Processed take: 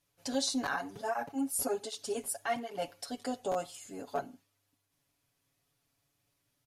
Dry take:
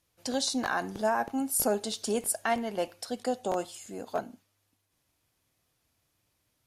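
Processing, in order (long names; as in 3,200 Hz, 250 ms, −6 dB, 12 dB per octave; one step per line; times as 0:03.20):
comb filter 7.1 ms, depth 90%
0:00.76–0:02.82: through-zero flanger with one copy inverted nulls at 1.3 Hz, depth 7.7 ms
level −5.5 dB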